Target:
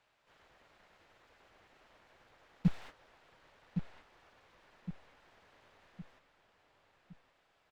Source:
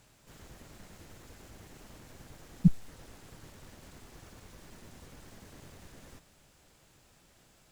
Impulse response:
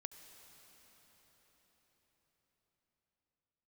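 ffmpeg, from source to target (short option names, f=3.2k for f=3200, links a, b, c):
-filter_complex "[0:a]acrossover=split=490 4000:gain=0.141 1 0.0891[a][b][c];[a][b][c]amix=inputs=3:normalize=0,agate=range=-15dB:threshold=-55dB:ratio=16:detection=peak,asplit=2[d][e];[e]adelay=1113,lowpass=f=3.2k:p=1,volume=-7dB,asplit=2[f][g];[g]adelay=1113,lowpass=f=3.2k:p=1,volume=0.46,asplit=2[h][i];[i]adelay=1113,lowpass=f=3.2k:p=1,volume=0.46,asplit=2[j][k];[k]adelay=1113,lowpass=f=3.2k:p=1,volume=0.46,asplit=2[l][m];[m]adelay=1113,lowpass=f=3.2k:p=1,volume=0.46[n];[d][f][h][j][l][n]amix=inputs=6:normalize=0,volume=9dB"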